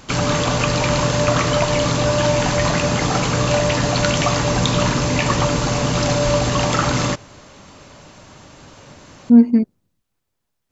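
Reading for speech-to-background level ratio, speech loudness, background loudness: 4.0 dB, −14.0 LKFS, −18.0 LKFS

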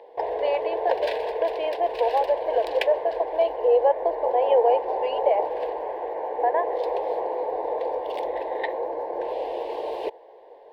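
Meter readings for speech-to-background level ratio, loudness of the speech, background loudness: 4.0 dB, −25.0 LKFS, −29.0 LKFS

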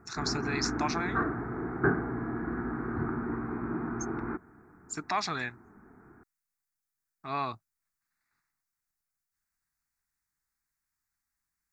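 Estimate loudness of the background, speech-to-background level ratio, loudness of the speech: −33.5 LKFS, −0.5 dB, −34.0 LKFS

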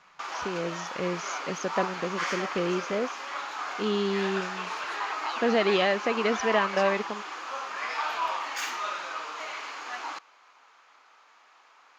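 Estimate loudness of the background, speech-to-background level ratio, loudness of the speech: −33.0 LKFS, 4.0 dB, −29.0 LKFS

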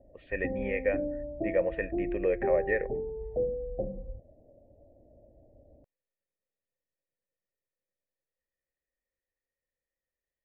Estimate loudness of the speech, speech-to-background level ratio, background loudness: −31.5 LKFS, 4.0 dB, −35.5 LKFS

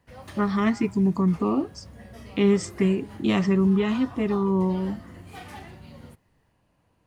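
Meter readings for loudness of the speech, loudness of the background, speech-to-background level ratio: −24.0 LKFS, −43.5 LKFS, 19.5 dB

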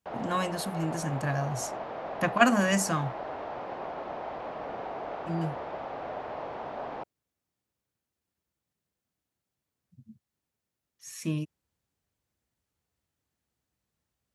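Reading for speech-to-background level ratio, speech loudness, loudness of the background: 8.5 dB, −29.5 LKFS, −38.0 LKFS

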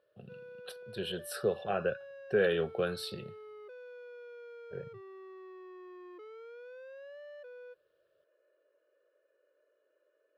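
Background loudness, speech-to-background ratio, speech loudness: −49.5 LKFS, 16.0 dB, −33.5 LKFS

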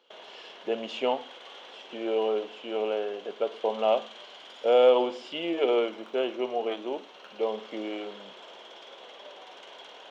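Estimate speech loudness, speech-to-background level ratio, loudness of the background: −28.5 LKFS, 18.0 dB, −46.5 LKFS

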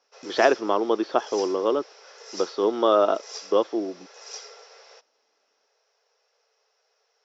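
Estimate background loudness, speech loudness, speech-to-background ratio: −41.5 LKFS, −24.0 LKFS, 17.5 dB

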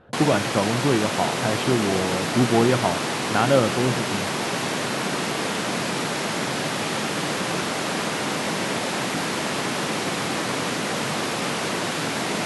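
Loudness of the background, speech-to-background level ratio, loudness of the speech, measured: −25.0 LKFS, 1.5 dB, −23.5 LKFS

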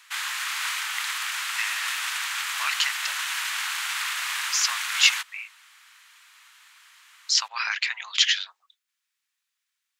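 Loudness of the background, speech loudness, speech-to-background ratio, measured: −27.5 LKFS, −24.5 LKFS, 3.0 dB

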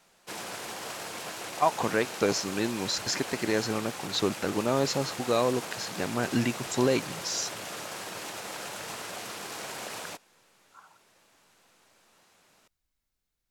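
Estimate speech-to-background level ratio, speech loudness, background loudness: 8.5 dB, −29.0 LKFS, −37.5 LKFS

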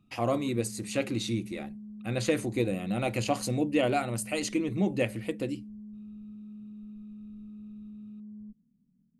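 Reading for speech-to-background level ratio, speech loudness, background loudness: 14.5 dB, −30.5 LKFS, −45.0 LKFS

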